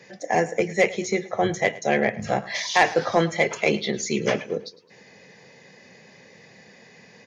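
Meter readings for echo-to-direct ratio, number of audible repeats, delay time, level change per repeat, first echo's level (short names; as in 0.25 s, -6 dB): -18.0 dB, 3, 0.107 s, -7.5 dB, -19.0 dB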